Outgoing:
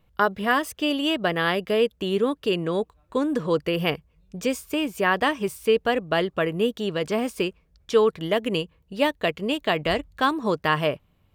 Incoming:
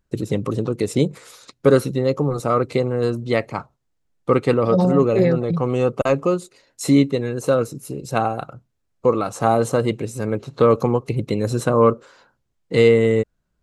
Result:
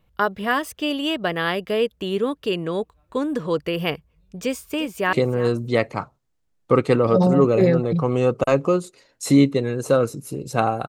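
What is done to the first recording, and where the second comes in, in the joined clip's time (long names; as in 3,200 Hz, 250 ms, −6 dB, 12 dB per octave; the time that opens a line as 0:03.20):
outgoing
0:04.43–0:05.13: delay throw 350 ms, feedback 20%, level −14.5 dB
0:05.13: continue with incoming from 0:02.71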